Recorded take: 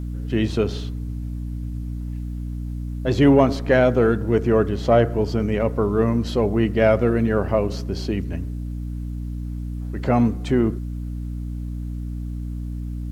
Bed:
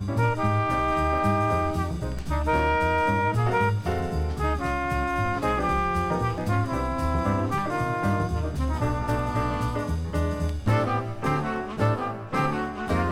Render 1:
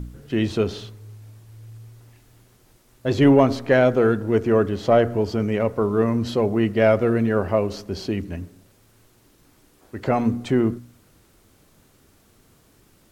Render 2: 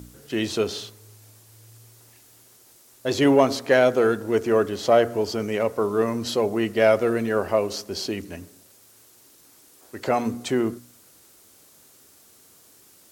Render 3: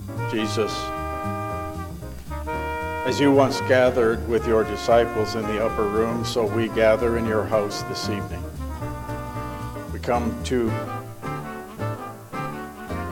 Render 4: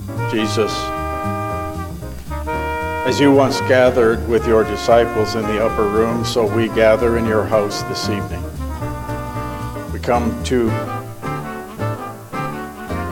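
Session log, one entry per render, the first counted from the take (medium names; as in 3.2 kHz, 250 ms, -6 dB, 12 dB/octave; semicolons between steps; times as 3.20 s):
de-hum 60 Hz, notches 5
high-pass 58 Hz; tone controls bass -10 dB, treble +10 dB
add bed -5 dB
trim +6 dB; peak limiter -2 dBFS, peak gain reduction 3 dB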